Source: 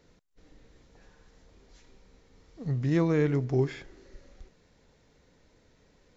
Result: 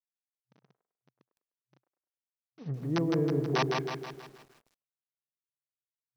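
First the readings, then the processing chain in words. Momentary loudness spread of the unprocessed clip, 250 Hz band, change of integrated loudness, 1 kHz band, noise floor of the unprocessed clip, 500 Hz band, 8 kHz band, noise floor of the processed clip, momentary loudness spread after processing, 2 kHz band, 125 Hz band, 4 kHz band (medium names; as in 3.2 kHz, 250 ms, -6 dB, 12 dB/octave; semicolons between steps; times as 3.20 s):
13 LU, -2.5 dB, -3.0 dB, +7.5 dB, -64 dBFS, -2.5 dB, no reading, under -85 dBFS, 17 LU, +2.0 dB, -5.0 dB, +9.5 dB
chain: send-on-delta sampling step -45.5 dBFS; feedback echo behind a band-pass 101 ms, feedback 36%, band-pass 820 Hz, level -11.5 dB; low-pass that closes with the level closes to 730 Hz, closed at -25 dBFS; dynamic bell 380 Hz, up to +5 dB, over -40 dBFS, Q 5.7; integer overflow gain 16.5 dB; FFT band-pass 120–6200 Hz; bit-crushed delay 160 ms, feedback 55%, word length 9-bit, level -3.5 dB; trim -5 dB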